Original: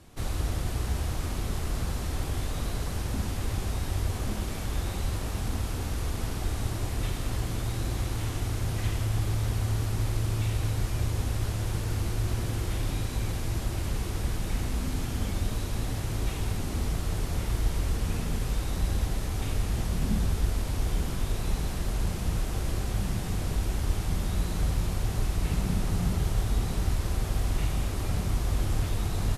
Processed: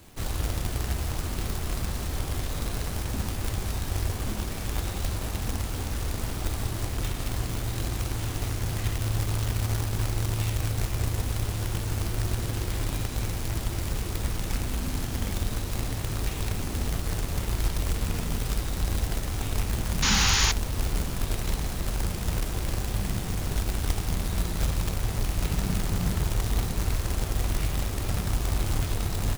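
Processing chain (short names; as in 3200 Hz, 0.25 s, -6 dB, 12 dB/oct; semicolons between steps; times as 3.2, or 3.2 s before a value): companded quantiser 4-bit; painted sound noise, 20.02–20.52, 770–7100 Hz -24 dBFS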